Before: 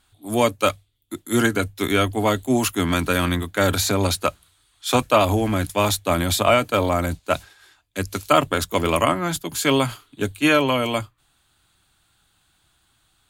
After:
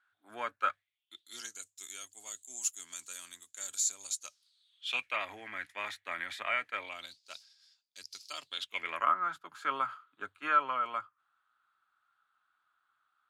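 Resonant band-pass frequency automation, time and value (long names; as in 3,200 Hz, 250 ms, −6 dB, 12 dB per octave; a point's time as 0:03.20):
resonant band-pass, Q 6.5
0:00.70 1,500 Hz
0:01.58 7,100 Hz
0:04.14 7,100 Hz
0:05.22 1,900 Hz
0:06.77 1,900 Hz
0:07.19 5,000 Hz
0:08.40 5,000 Hz
0:09.07 1,300 Hz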